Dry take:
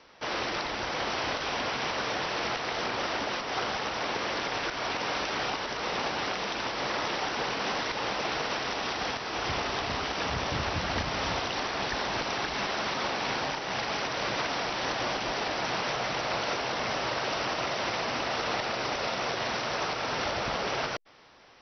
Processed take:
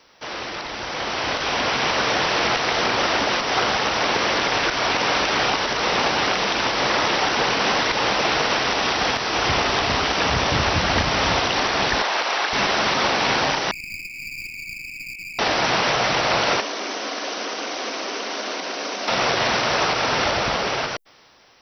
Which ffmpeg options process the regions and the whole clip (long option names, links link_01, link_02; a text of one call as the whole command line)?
ffmpeg -i in.wav -filter_complex "[0:a]asettb=1/sr,asplit=3[link_01][link_02][link_03];[link_01]atrim=end=12.024[link_04];[link_02]atrim=start=12.02:end=12.53,asetpts=PTS-STARTPTS,afade=type=in:duration=0.004:curve=qsin,afade=type=out:start_time=0.506:duration=0.004:curve=qsin,highpass=550,highshelf=frequency=5600:gain=-10.5[link_05];[link_03]atrim=start=12.526[link_06];[link_04][link_05]acrossfade=duration=0.004:curve1=hsin:curve2=qsin[link_07];[link_07][link_06]acrossfade=duration=0.004:curve1=qsin:curve2=hsin,asettb=1/sr,asplit=3[link_08][link_09][link_10];[link_08]atrim=end=13.714[link_11];[link_09]atrim=start=13.71:end=15.39,asetpts=PTS-STARTPTS,afade=type=in:duration=0.004:curve=qsin,afade=type=out:start_time=1.676:duration=0.004:curve=qsin,asuperpass=centerf=2400:order=8:qfactor=7.2,aeval=exprs='clip(val(0),-1,0.00447)':channel_layout=same[link_12];[link_10]atrim=start=15.386[link_13];[link_11][link_12]acrossfade=duration=0.004:curve1=hsin:curve2=qsin[link_14];[link_14][link_13]acrossfade=duration=0.004:curve1=qsin:curve2=hsin,asettb=1/sr,asplit=3[link_15][link_16][link_17];[link_15]atrim=end=16.604[link_18];[link_16]atrim=start=16.6:end=19.08,asetpts=PTS-STARTPTS,afade=type=in:duration=0.004:curve=qsin,afade=type=out:start_time=2.476:duration=0.004:curve=qsin,acrossover=split=480|1500[link_19][link_20][link_21];[link_19]acompressor=threshold=-40dB:ratio=4[link_22];[link_20]acompressor=threshold=-46dB:ratio=4[link_23];[link_21]acompressor=threshold=-45dB:ratio=4[link_24];[link_22][link_23][link_24]amix=inputs=3:normalize=0,afreqshift=160,bandreject=frequency=850:width=8.6[link_25];[link_17]atrim=start=19.076[link_26];[link_18][link_25]acrossfade=duration=0.004:curve1=hsin:curve2=qsin[link_27];[link_27][link_26]acrossfade=duration=0.004:curve1=qsin:curve2=hsin,acrossover=split=3700[link_28][link_29];[link_29]acompressor=threshold=-44dB:ratio=4:attack=1:release=60[link_30];[link_28][link_30]amix=inputs=2:normalize=0,aemphasis=mode=production:type=50kf,dynaudnorm=framelen=290:gausssize=9:maxgain=10dB" out.wav